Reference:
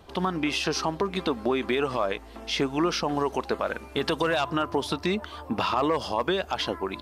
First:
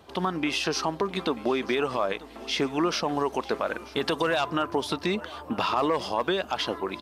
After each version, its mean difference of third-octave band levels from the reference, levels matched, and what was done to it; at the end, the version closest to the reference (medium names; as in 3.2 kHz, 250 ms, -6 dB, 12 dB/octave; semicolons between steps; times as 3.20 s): 1.0 dB: high-pass 130 Hz 6 dB/octave; feedback delay 937 ms, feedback 40%, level -20 dB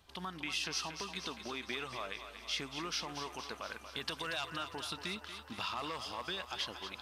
7.0 dB: amplifier tone stack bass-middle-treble 5-5-5; on a send: thinning echo 234 ms, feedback 67%, high-pass 360 Hz, level -9 dB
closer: first